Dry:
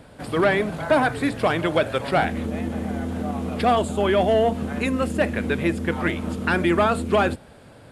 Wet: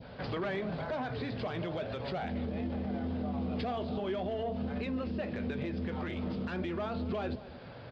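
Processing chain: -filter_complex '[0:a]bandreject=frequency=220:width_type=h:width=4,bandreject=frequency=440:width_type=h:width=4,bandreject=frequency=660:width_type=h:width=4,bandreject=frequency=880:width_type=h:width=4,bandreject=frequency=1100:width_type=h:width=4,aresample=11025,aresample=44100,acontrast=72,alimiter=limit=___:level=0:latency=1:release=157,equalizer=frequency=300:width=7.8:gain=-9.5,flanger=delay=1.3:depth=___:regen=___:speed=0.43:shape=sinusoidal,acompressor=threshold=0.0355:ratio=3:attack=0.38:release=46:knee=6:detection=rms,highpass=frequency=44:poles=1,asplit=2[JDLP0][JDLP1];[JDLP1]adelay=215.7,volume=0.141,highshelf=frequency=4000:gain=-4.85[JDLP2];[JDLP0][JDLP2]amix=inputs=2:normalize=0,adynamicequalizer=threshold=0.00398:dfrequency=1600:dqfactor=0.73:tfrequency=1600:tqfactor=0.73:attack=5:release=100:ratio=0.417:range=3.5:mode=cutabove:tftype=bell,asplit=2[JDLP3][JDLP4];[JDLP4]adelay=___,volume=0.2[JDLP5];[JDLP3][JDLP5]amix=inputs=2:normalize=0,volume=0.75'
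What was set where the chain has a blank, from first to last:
0.316, 8.1, -72, 16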